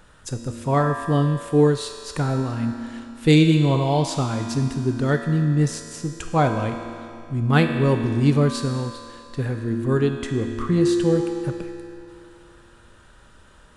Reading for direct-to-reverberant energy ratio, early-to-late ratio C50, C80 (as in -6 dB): 3.5 dB, 5.0 dB, 6.0 dB